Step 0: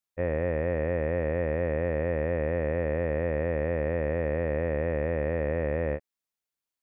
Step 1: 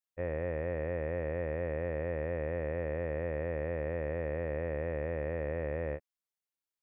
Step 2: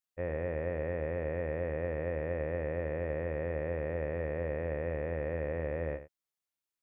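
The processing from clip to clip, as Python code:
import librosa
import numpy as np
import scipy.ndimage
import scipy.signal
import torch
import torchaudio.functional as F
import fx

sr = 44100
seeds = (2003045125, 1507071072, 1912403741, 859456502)

y1 = fx.peak_eq(x, sr, hz=220.0, db=-5.5, octaves=0.43)
y1 = F.gain(torch.from_numpy(y1), -6.5).numpy()
y2 = y1 + 10.0 ** (-12.0 / 20.0) * np.pad(y1, (int(85 * sr / 1000.0), 0))[:len(y1)]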